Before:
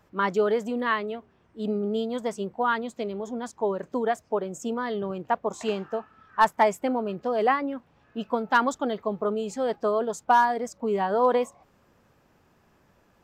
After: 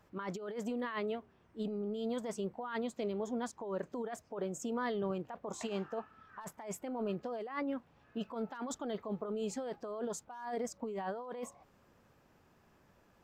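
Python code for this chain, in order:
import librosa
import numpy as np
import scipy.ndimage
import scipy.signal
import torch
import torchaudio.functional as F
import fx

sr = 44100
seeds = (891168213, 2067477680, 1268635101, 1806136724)

y = fx.over_compress(x, sr, threshold_db=-30.0, ratio=-1.0)
y = F.gain(torch.from_numpy(y), -8.5).numpy()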